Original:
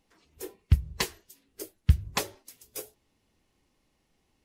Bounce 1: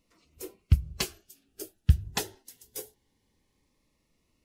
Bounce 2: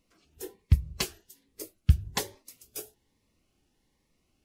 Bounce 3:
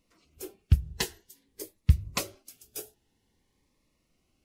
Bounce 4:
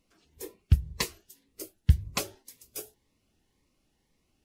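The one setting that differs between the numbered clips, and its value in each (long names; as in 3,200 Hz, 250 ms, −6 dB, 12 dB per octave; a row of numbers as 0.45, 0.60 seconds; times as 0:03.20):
phaser whose notches keep moving one way, speed: 0.23, 1.2, 0.5, 1.9 Hertz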